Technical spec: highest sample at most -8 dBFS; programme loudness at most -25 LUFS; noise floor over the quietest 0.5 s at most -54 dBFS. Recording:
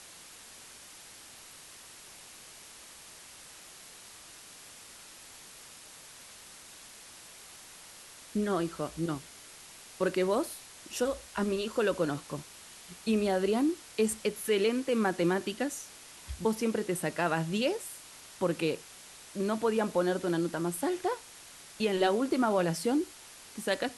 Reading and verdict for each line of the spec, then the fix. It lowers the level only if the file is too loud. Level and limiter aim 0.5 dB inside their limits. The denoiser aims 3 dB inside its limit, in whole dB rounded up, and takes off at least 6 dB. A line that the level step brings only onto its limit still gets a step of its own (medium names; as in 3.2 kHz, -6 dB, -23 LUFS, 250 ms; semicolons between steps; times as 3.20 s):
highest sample -15.5 dBFS: pass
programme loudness -31.0 LUFS: pass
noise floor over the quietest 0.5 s -51 dBFS: fail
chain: noise reduction 6 dB, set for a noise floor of -51 dBFS